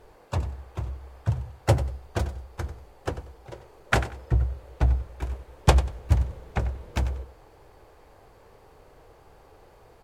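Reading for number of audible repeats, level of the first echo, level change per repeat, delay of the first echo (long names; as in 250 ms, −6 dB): 2, −14.0 dB, −13.0 dB, 94 ms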